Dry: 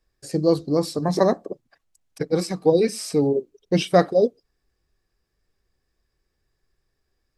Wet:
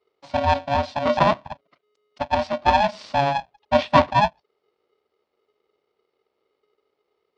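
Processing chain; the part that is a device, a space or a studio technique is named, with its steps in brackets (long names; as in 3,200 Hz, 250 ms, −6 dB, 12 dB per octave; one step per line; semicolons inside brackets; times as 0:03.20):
ring modulator pedal into a guitar cabinet (ring modulator with a square carrier 420 Hz; loudspeaker in its box 88–4,200 Hz, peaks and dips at 110 Hz −7 dB, 600 Hz +8 dB, 990 Hz +4 dB, 1,600 Hz −4 dB)
level −1.5 dB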